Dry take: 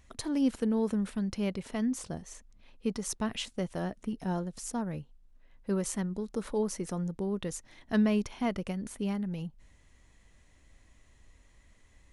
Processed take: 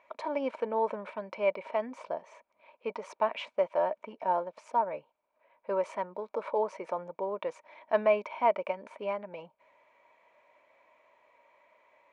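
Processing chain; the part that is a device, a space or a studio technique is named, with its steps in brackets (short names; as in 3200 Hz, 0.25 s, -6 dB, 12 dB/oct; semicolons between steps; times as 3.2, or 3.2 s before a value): tin-can telephone (BPF 570–2200 Hz; small resonant body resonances 610/930/2300 Hz, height 17 dB, ringing for 25 ms)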